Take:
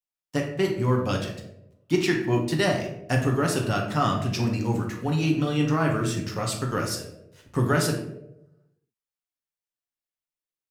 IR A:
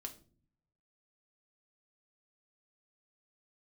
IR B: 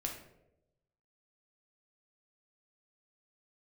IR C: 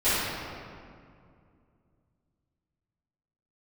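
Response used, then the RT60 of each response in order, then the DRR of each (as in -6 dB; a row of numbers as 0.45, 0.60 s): B; 0.45, 0.90, 2.3 s; 3.5, 0.5, -18.0 dB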